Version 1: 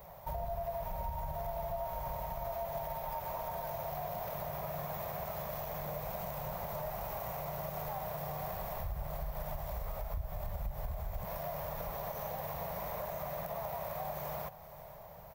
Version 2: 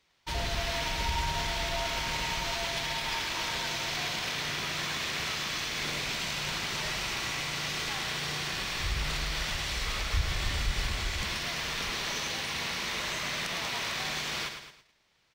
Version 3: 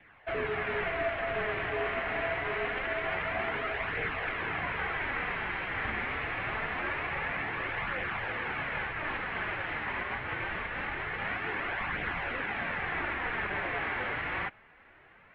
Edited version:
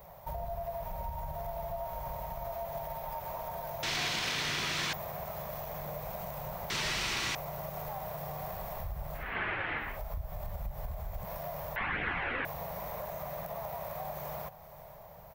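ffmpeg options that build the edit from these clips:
-filter_complex "[1:a]asplit=2[a][b];[2:a]asplit=2[c][d];[0:a]asplit=5[e][f][g][h][i];[e]atrim=end=3.832[j];[a]atrim=start=3.828:end=4.932[k];[f]atrim=start=4.928:end=6.702[l];[b]atrim=start=6.698:end=7.352[m];[g]atrim=start=7.348:end=9.37[n];[c]atrim=start=9.13:end=10[o];[h]atrim=start=9.76:end=11.762[p];[d]atrim=start=11.758:end=12.452[q];[i]atrim=start=12.448[r];[j][k]acrossfade=d=0.004:c1=hsin:c2=hsin[s];[s][l]acrossfade=d=0.004:c1=hsin:c2=hsin[t];[t][m]acrossfade=d=0.004:c1=hsin:c2=hsin[u];[u][n]acrossfade=d=0.004:c1=hsin:c2=hsin[v];[v][o]acrossfade=d=0.24:c1=tri:c2=tri[w];[w][p]acrossfade=d=0.24:c1=tri:c2=tri[x];[x][q]acrossfade=d=0.004:c1=hsin:c2=hsin[y];[y][r]acrossfade=d=0.004:c1=hsin:c2=hsin"

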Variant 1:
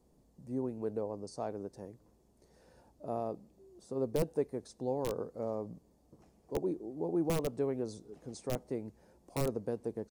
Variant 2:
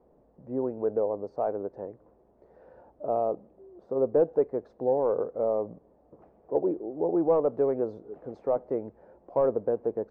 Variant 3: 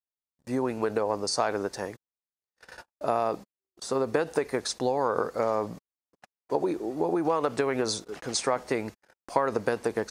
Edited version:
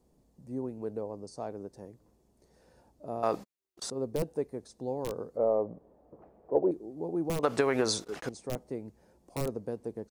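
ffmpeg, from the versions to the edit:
-filter_complex "[2:a]asplit=2[a][b];[0:a]asplit=4[c][d][e][f];[c]atrim=end=3.232[g];[a]atrim=start=3.228:end=3.902[h];[d]atrim=start=3.898:end=5.372[i];[1:a]atrim=start=5.368:end=6.712[j];[e]atrim=start=6.708:end=7.432[k];[b]atrim=start=7.428:end=8.292[l];[f]atrim=start=8.288[m];[g][h]acrossfade=d=0.004:c1=hsin:c2=hsin[n];[n][i]acrossfade=d=0.004:c1=hsin:c2=hsin[o];[o][j]acrossfade=d=0.004:c1=hsin:c2=hsin[p];[p][k]acrossfade=d=0.004:c1=hsin:c2=hsin[q];[q][l]acrossfade=d=0.004:c1=hsin:c2=hsin[r];[r][m]acrossfade=d=0.004:c1=hsin:c2=hsin"

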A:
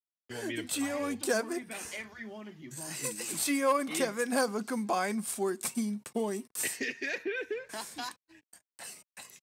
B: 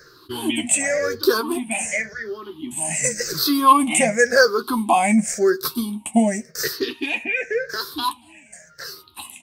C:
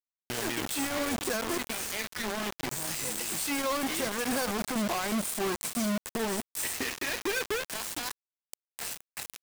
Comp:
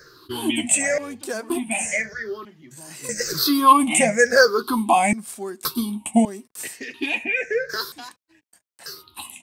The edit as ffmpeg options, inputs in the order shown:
-filter_complex "[0:a]asplit=5[a][b][c][d][e];[1:a]asplit=6[f][g][h][i][j][k];[f]atrim=end=0.982[l];[a]atrim=start=0.978:end=1.502[m];[g]atrim=start=1.498:end=2.452[n];[b]atrim=start=2.448:end=3.092[o];[h]atrim=start=3.088:end=5.132[p];[c]atrim=start=5.128:end=5.652[q];[i]atrim=start=5.648:end=6.252[r];[d]atrim=start=6.248:end=6.942[s];[j]atrim=start=6.938:end=7.922[t];[e]atrim=start=7.918:end=8.862[u];[k]atrim=start=8.858[v];[l][m]acrossfade=d=0.004:c1=hsin:c2=hsin[w];[w][n]acrossfade=d=0.004:c1=hsin:c2=hsin[x];[x][o]acrossfade=d=0.004:c1=hsin:c2=hsin[y];[y][p]acrossfade=d=0.004:c1=hsin:c2=hsin[z];[z][q]acrossfade=d=0.004:c1=hsin:c2=hsin[aa];[aa][r]acrossfade=d=0.004:c1=hsin:c2=hsin[ab];[ab][s]acrossfade=d=0.004:c1=hsin:c2=hsin[ac];[ac][t]acrossfade=d=0.004:c1=hsin:c2=hsin[ad];[ad][u]acrossfade=d=0.004:c1=hsin:c2=hsin[ae];[ae][v]acrossfade=d=0.004:c1=hsin:c2=hsin"

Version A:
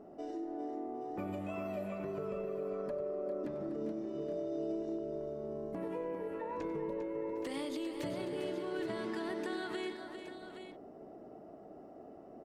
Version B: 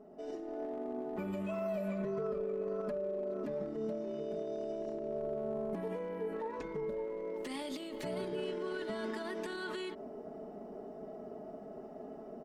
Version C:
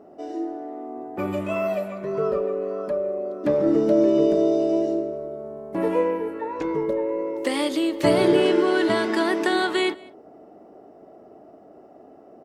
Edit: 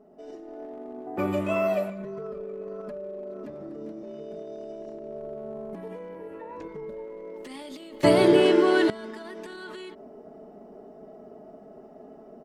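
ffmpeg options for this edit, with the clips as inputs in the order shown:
-filter_complex "[2:a]asplit=2[a][b];[0:a]asplit=2[c][d];[1:a]asplit=5[e][f][g][h][i];[e]atrim=end=1.072[j];[a]atrim=start=1.068:end=1.902[k];[f]atrim=start=1.898:end=3.502[l];[c]atrim=start=3.498:end=4.032[m];[g]atrim=start=4.028:end=6.152[n];[d]atrim=start=6.148:end=6.682[o];[h]atrim=start=6.678:end=8.032[p];[b]atrim=start=8.028:end=8.902[q];[i]atrim=start=8.898[r];[j][k]acrossfade=d=0.004:c1=hsin:c2=hsin[s];[s][l]acrossfade=d=0.004:c1=hsin:c2=hsin[t];[t][m]acrossfade=d=0.004:c1=hsin:c2=hsin[u];[u][n]acrossfade=d=0.004:c1=hsin:c2=hsin[v];[v][o]acrossfade=d=0.004:c1=hsin:c2=hsin[w];[w][p]acrossfade=d=0.004:c1=hsin:c2=hsin[x];[x][q]acrossfade=d=0.004:c1=hsin:c2=hsin[y];[y][r]acrossfade=d=0.004:c1=hsin:c2=hsin"

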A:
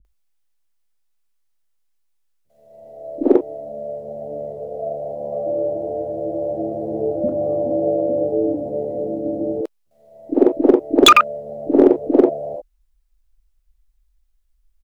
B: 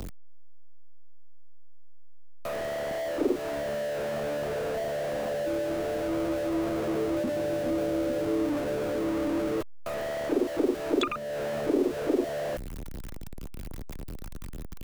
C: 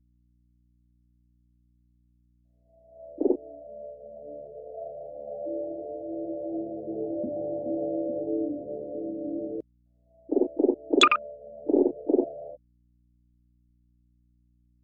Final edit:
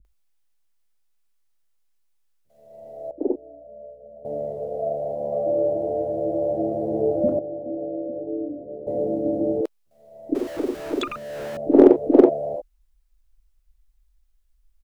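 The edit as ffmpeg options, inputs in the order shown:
-filter_complex "[2:a]asplit=2[a][b];[0:a]asplit=4[c][d][e][f];[c]atrim=end=3.112[g];[a]atrim=start=3.108:end=4.252[h];[d]atrim=start=4.248:end=7.392[i];[b]atrim=start=7.388:end=8.872[j];[e]atrim=start=8.868:end=10.352[k];[1:a]atrim=start=10.348:end=11.572[l];[f]atrim=start=11.568[m];[g][h]acrossfade=d=0.004:c1=hsin:c2=hsin[n];[n][i]acrossfade=d=0.004:c1=hsin:c2=hsin[o];[o][j]acrossfade=d=0.004:c1=hsin:c2=hsin[p];[p][k]acrossfade=d=0.004:c1=hsin:c2=hsin[q];[q][l]acrossfade=d=0.004:c1=hsin:c2=hsin[r];[r][m]acrossfade=d=0.004:c1=hsin:c2=hsin"

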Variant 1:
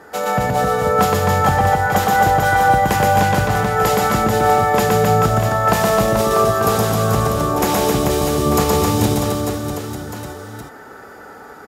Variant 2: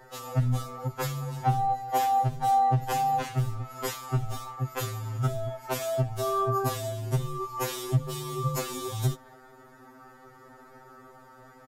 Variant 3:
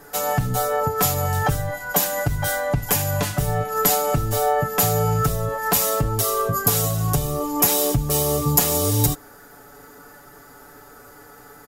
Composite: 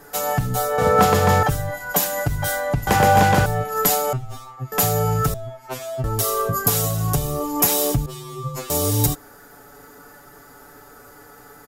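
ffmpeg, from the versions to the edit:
-filter_complex "[0:a]asplit=2[a][b];[1:a]asplit=3[c][d][e];[2:a]asplit=6[f][g][h][i][j][k];[f]atrim=end=0.782[l];[a]atrim=start=0.778:end=1.432[m];[g]atrim=start=1.428:end=2.872[n];[b]atrim=start=2.868:end=3.462[o];[h]atrim=start=3.458:end=4.132[p];[c]atrim=start=4.128:end=4.722[q];[i]atrim=start=4.718:end=5.342[r];[d]atrim=start=5.338:end=6.042[s];[j]atrim=start=6.038:end=8.062[t];[e]atrim=start=8.058:end=8.702[u];[k]atrim=start=8.698[v];[l][m]acrossfade=d=0.004:c1=hsin:c2=hsin[w];[w][n]acrossfade=d=0.004:c1=hsin:c2=hsin[x];[x][o]acrossfade=d=0.004:c1=hsin:c2=hsin[y];[y][p]acrossfade=d=0.004:c1=hsin:c2=hsin[z];[z][q]acrossfade=d=0.004:c1=hsin:c2=hsin[aa];[aa][r]acrossfade=d=0.004:c1=hsin:c2=hsin[ab];[ab][s]acrossfade=d=0.004:c1=hsin:c2=hsin[ac];[ac][t]acrossfade=d=0.004:c1=hsin:c2=hsin[ad];[ad][u]acrossfade=d=0.004:c1=hsin:c2=hsin[ae];[ae][v]acrossfade=d=0.004:c1=hsin:c2=hsin"

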